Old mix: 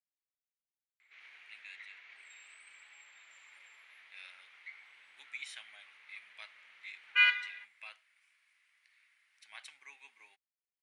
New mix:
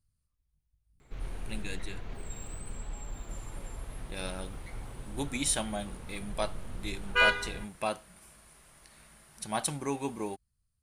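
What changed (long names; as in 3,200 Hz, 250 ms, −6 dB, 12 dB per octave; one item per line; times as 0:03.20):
background −8.0 dB
master: remove four-pole ladder band-pass 2,400 Hz, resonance 60%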